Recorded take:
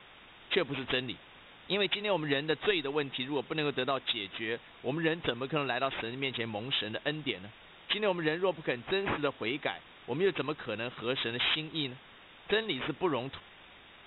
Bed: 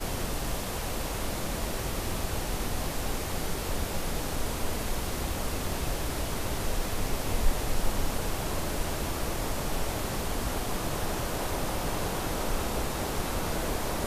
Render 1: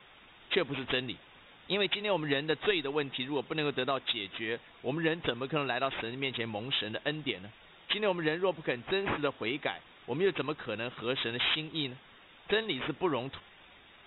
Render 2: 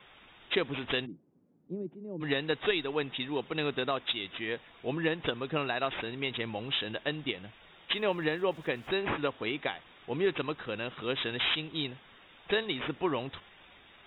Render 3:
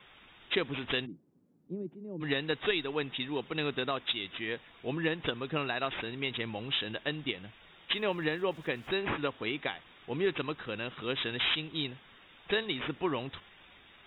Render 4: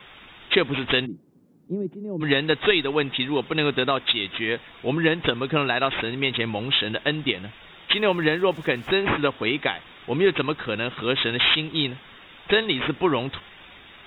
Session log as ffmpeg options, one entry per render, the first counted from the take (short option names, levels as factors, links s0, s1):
-af "afftdn=nr=6:nf=-55"
-filter_complex "[0:a]asplit=3[s0][s1][s2];[s0]afade=t=out:st=1.05:d=0.02[s3];[s1]asuperpass=centerf=220:order=4:qfactor=1.1,afade=t=in:st=1.05:d=0.02,afade=t=out:st=2.2:d=0.02[s4];[s2]afade=t=in:st=2.2:d=0.02[s5];[s3][s4][s5]amix=inputs=3:normalize=0,asplit=3[s6][s7][s8];[s6]afade=t=out:st=7.94:d=0.02[s9];[s7]aeval=exprs='val(0)*gte(abs(val(0)),0.00141)':c=same,afade=t=in:st=7.94:d=0.02,afade=t=out:st=8.94:d=0.02[s10];[s8]afade=t=in:st=8.94:d=0.02[s11];[s9][s10][s11]amix=inputs=3:normalize=0"
-af "equalizer=f=640:t=o:w=1.4:g=-3"
-af "volume=3.35"